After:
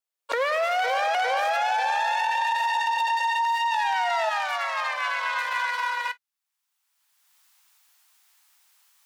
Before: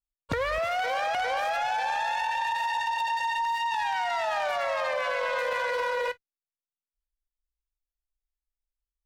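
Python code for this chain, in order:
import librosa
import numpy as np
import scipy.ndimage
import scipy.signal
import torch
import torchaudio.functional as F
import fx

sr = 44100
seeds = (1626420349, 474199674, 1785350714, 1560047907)

y = fx.recorder_agc(x, sr, target_db=-25.0, rise_db_per_s=24.0, max_gain_db=30)
y = fx.steep_highpass(y, sr, hz=fx.steps((0.0, 420.0), (4.29, 790.0)), slope=36)
y = y * 10.0 ** (4.0 / 20.0)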